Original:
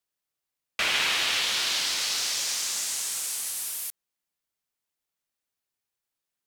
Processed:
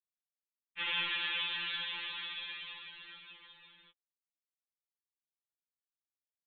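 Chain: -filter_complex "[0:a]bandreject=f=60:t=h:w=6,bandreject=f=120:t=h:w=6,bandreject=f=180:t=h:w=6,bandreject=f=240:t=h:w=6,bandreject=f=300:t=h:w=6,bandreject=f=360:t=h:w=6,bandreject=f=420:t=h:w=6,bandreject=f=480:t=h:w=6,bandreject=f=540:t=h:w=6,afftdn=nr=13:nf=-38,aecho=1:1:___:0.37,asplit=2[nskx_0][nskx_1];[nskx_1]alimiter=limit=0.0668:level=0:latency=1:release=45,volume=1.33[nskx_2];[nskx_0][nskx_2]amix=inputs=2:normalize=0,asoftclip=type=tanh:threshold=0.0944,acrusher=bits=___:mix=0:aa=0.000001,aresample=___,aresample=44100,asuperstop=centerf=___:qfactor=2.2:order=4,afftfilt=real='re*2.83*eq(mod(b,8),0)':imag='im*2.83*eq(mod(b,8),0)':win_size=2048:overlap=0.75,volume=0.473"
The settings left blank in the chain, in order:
1.2, 7, 8000, 680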